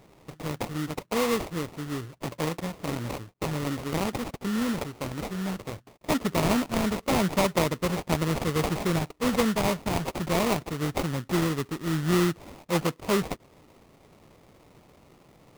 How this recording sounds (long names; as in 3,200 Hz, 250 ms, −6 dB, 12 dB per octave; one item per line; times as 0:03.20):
aliases and images of a low sample rate 1,600 Hz, jitter 20%